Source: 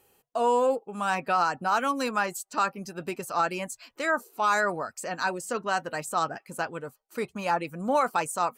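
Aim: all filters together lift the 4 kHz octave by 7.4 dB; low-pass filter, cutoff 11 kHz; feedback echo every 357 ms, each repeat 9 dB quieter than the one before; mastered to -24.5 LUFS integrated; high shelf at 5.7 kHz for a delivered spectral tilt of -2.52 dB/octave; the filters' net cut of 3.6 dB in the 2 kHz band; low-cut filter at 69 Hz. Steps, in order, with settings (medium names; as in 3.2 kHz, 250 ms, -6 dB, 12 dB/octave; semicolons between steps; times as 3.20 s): high-pass 69 Hz; low-pass 11 kHz; peaking EQ 2 kHz -8 dB; peaking EQ 4 kHz +8 dB; treble shelf 5.7 kHz +7.5 dB; feedback delay 357 ms, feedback 35%, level -9 dB; trim +3.5 dB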